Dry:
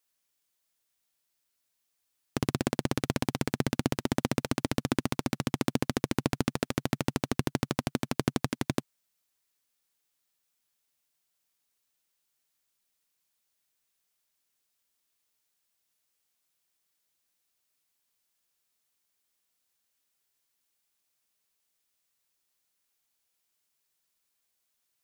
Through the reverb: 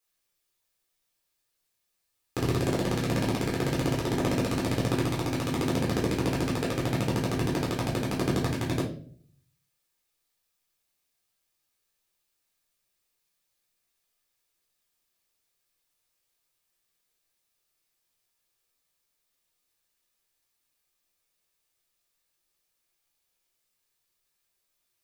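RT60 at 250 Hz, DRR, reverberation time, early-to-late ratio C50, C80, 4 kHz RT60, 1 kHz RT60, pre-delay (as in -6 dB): 0.75 s, -5.0 dB, 0.50 s, 6.5 dB, 11.5 dB, 0.40 s, 0.40 s, 9 ms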